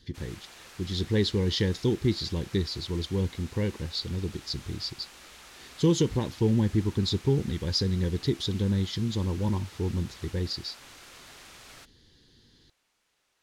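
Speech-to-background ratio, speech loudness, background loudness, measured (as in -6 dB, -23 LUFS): 19.0 dB, -29.0 LUFS, -48.0 LUFS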